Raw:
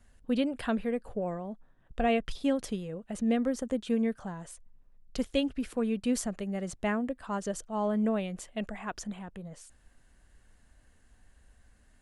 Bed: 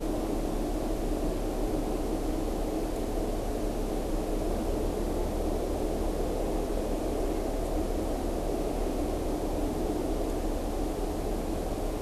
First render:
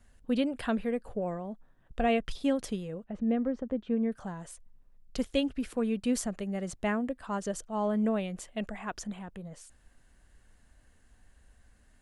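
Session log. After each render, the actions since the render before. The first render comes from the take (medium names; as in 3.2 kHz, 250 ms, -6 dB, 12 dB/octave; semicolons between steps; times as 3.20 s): 3.04–4.12 s: tape spacing loss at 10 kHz 37 dB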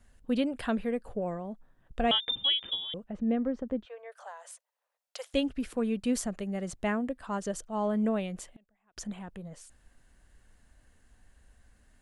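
2.11–2.94 s: frequency inversion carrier 3.6 kHz; 3.85–5.34 s: steep high-pass 530 Hz 48 dB/octave; 8.52–8.97 s: inverted gate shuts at -38 dBFS, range -34 dB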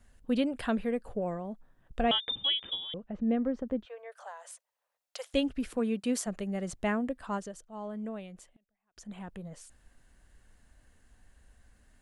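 2.03–3.32 s: distance through air 100 m; 5.78–6.26 s: high-pass 110 Hz -> 290 Hz; 7.34–9.21 s: dip -10 dB, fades 0.16 s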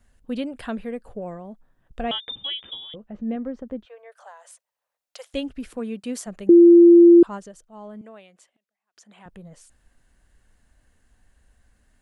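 2.45–3.36 s: doubling 14 ms -11.5 dB; 6.49–7.23 s: bleep 343 Hz -6.5 dBFS; 8.01–9.26 s: frequency weighting A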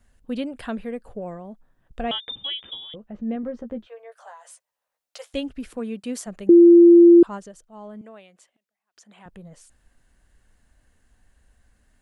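3.42–5.36 s: doubling 13 ms -5.5 dB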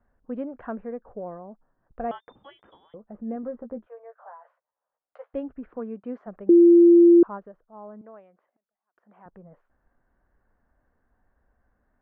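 low-pass 1.4 kHz 24 dB/octave; bass shelf 220 Hz -10.5 dB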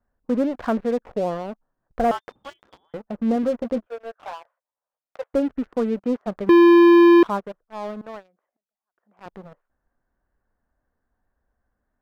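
waveshaping leveller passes 3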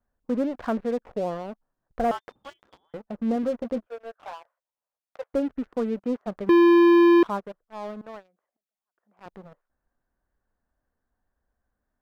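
trim -4 dB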